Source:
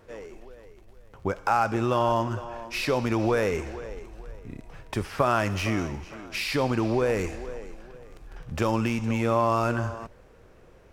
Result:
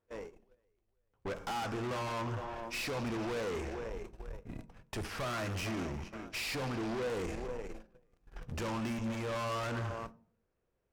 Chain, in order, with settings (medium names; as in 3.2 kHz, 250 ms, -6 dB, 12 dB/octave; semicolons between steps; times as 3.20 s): gate -40 dBFS, range -26 dB; valve stage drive 35 dB, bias 0.5; on a send: reverberation RT60 0.45 s, pre-delay 3 ms, DRR 15.5 dB